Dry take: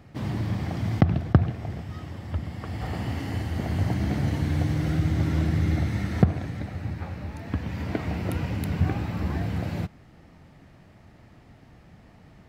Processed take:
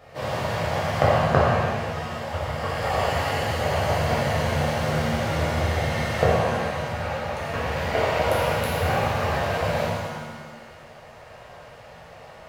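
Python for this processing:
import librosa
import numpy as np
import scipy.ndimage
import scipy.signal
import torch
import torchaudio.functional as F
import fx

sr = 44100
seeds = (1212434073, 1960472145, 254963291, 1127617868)

p1 = fx.peak_eq(x, sr, hz=74.0, db=-4.0, octaves=0.38)
p2 = fx.rider(p1, sr, range_db=4, speed_s=2.0)
p3 = p1 + F.gain(torch.from_numpy(p2), 3.0).numpy()
p4 = fx.low_shelf_res(p3, sr, hz=390.0, db=-10.5, q=3.0)
p5 = fx.rev_shimmer(p4, sr, seeds[0], rt60_s=1.5, semitones=7, shimmer_db=-8, drr_db=-8.0)
y = F.gain(torch.from_numpy(p5), -7.0).numpy()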